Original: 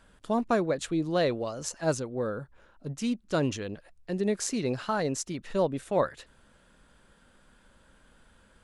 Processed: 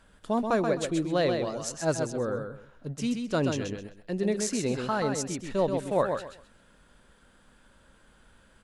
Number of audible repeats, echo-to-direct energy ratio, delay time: 3, −5.5 dB, 130 ms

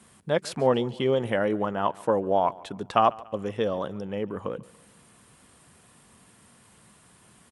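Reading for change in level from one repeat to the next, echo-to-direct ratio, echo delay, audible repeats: −7.0 dB, −21.0 dB, 143 ms, 2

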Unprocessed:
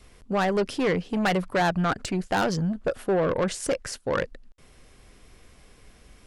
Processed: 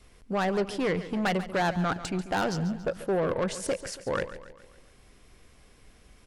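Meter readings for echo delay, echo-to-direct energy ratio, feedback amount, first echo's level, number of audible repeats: 140 ms, −12.5 dB, 51%, −14.0 dB, 4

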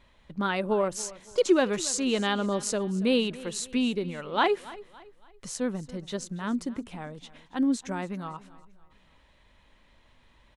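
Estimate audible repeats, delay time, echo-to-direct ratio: 2, 281 ms, −18.5 dB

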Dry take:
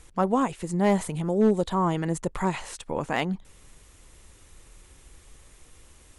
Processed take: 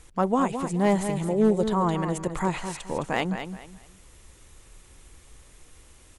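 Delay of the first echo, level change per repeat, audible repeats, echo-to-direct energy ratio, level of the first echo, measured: 213 ms, −11.0 dB, 3, −8.0 dB, −8.5 dB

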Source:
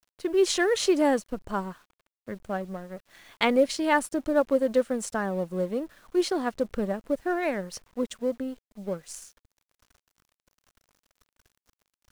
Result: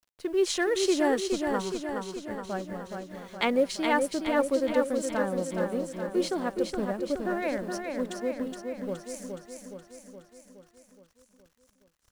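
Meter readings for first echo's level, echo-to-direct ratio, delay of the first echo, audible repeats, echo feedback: −5.0 dB, −3.0 dB, 419 ms, 7, 59%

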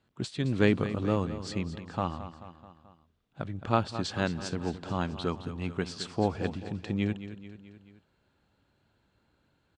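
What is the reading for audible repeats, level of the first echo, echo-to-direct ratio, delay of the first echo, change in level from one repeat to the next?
4, −12.5 dB, −11.0 dB, 217 ms, −5.0 dB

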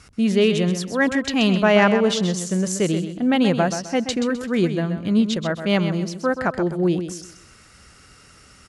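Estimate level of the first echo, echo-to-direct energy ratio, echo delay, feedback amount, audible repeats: −9.0 dB, −8.5 dB, 129 ms, 31%, 3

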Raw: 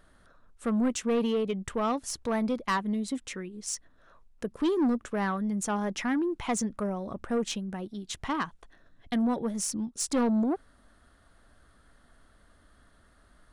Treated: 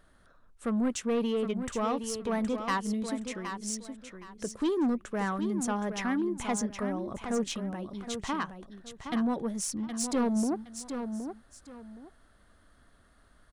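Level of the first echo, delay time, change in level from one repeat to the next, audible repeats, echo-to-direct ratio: −8.0 dB, 768 ms, −12.0 dB, 2, −7.5 dB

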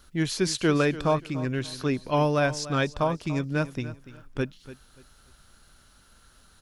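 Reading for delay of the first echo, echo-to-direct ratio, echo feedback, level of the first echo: 290 ms, −15.0 dB, 27%, −15.5 dB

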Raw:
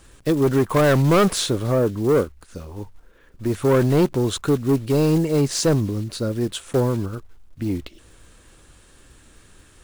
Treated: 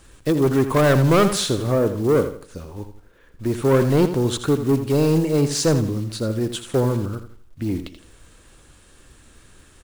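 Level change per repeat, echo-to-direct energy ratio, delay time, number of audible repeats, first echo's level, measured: −9.5 dB, −10.0 dB, 82 ms, 3, −10.5 dB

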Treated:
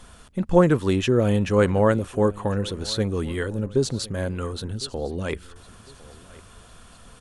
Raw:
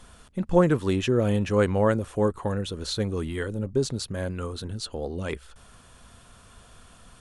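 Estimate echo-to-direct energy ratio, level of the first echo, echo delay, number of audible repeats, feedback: −21.0 dB, −21.5 dB, 1,056 ms, 2, 34%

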